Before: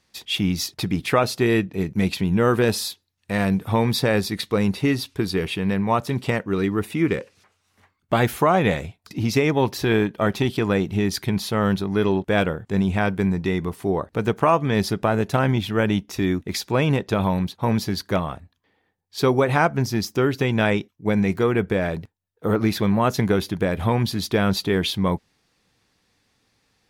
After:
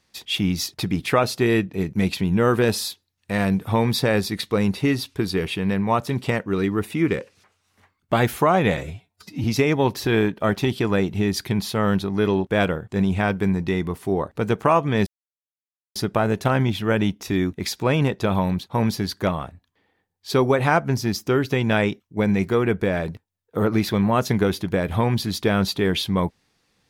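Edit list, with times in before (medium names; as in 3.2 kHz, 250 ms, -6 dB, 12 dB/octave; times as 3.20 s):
8.77–9.22 s: stretch 1.5×
14.84 s: insert silence 0.89 s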